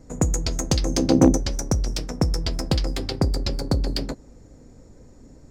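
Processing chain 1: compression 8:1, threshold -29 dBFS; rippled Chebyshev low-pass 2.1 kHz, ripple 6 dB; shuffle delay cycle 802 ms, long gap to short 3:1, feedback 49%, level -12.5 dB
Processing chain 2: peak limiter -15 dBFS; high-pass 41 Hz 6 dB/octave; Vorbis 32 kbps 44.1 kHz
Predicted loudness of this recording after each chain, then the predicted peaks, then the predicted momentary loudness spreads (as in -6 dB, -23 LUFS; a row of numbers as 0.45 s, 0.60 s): -40.0 LUFS, -28.0 LUFS; -16.5 dBFS, -13.5 dBFS; 12 LU, 5 LU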